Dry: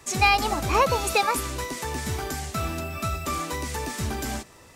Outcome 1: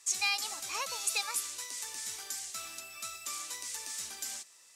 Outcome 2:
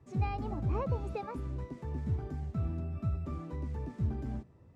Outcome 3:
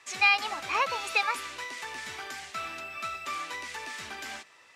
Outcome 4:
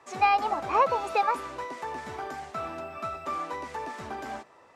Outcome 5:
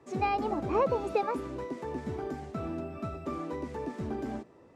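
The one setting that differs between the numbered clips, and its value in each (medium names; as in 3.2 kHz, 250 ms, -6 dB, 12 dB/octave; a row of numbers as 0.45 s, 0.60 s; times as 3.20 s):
band-pass filter, frequency: 7.4 kHz, 110 Hz, 2.3 kHz, 860 Hz, 330 Hz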